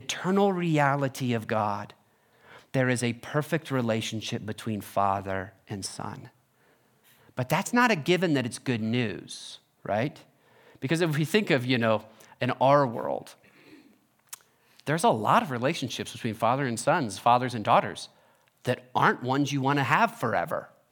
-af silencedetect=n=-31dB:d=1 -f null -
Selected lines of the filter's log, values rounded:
silence_start: 6.15
silence_end: 7.39 | silence_duration: 1.24
silence_start: 13.22
silence_end: 14.33 | silence_duration: 1.11